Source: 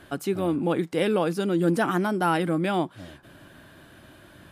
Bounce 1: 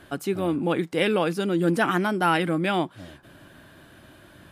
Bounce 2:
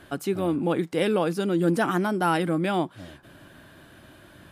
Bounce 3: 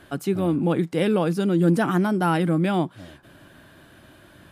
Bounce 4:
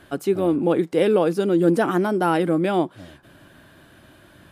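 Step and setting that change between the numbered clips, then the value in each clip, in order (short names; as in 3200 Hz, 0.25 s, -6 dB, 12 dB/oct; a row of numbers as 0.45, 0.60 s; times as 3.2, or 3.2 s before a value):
dynamic EQ, frequency: 2400, 6600, 150, 430 Hz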